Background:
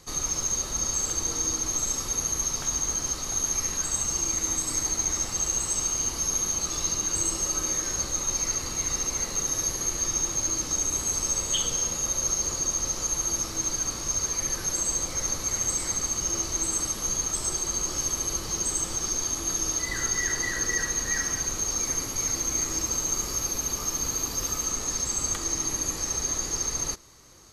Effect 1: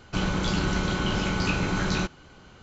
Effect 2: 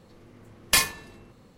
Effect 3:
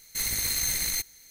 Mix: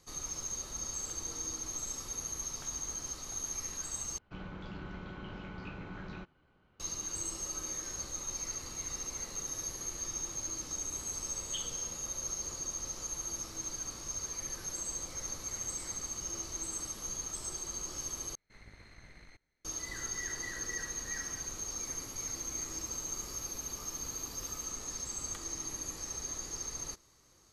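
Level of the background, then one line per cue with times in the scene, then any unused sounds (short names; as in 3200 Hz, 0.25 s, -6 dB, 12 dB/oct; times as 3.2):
background -11.5 dB
4.18 replace with 1 -18 dB + LPF 2600 Hz
18.35 replace with 3 -15.5 dB + LPF 1600 Hz
not used: 2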